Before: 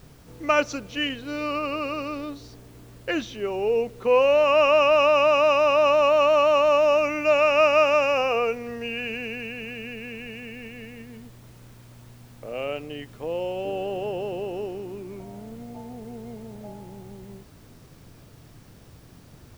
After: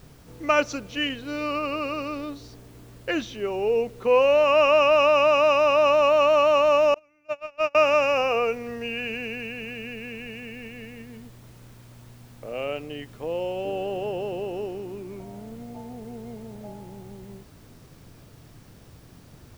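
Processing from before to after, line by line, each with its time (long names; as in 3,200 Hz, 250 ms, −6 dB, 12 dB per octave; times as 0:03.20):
0:06.94–0:07.75: noise gate −16 dBFS, range −36 dB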